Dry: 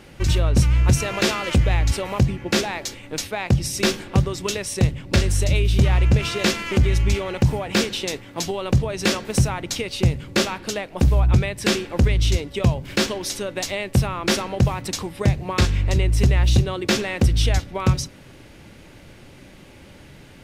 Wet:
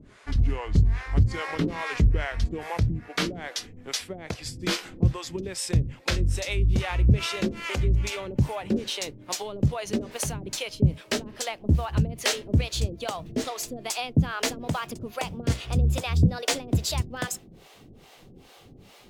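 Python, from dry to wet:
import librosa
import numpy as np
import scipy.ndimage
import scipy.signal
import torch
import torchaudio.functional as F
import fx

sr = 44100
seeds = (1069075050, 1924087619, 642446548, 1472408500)

y = fx.speed_glide(x, sr, from_pct=74, to_pct=140)
y = fx.harmonic_tremolo(y, sr, hz=2.4, depth_pct=100, crossover_hz=470.0)
y = F.gain(torch.from_numpy(y), -1.5).numpy()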